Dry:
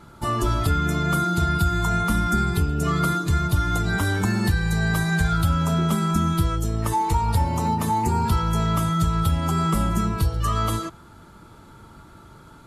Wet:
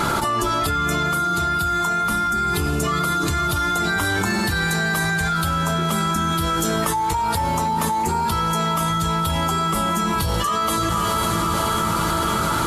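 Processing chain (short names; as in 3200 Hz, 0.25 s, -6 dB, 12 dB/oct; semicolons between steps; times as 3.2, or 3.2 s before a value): low shelf 290 Hz -12 dB; de-hum 54.95 Hz, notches 2; on a send: diffused feedback echo 0.515 s, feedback 65%, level -14 dB; on the sum: fast leveller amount 100%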